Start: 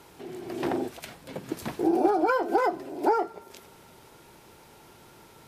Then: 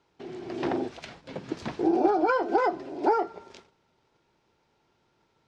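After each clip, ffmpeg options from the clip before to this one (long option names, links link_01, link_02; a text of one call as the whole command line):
ffmpeg -i in.wav -af "lowpass=frequency=6000:width=0.5412,lowpass=frequency=6000:width=1.3066,agate=range=-17dB:threshold=-49dB:ratio=16:detection=peak" out.wav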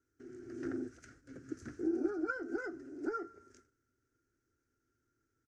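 ffmpeg -i in.wav -af "firequalizer=gain_entry='entry(110,0);entry(180,-17);entry(260,1);entry(600,-19);entry(950,-30);entry(1400,0);entry(2400,-18);entry(3600,-24);entry(6100,0)':delay=0.05:min_phase=1,volume=-6dB" out.wav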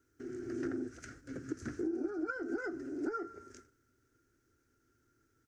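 ffmpeg -i in.wav -af "acompressor=threshold=-42dB:ratio=4,volume=7.5dB" out.wav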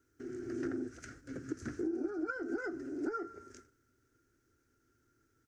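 ffmpeg -i in.wav -af anull out.wav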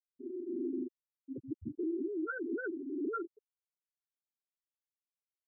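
ffmpeg -i in.wav -af "aeval=exprs='0.0596*(cos(1*acos(clip(val(0)/0.0596,-1,1)))-cos(1*PI/2))+0.00944*(cos(5*acos(clip(val(0)/0.0596,-1,1)))-cos(5*PI/2))':channel_layout=same,afftfilt=real='re*gte(hypot(re,im),0.0794)':imag='im*gte(hypot(re,im),0.0794)':win_size=1024:overlap=0.75,volume=-1.5dB" out.wav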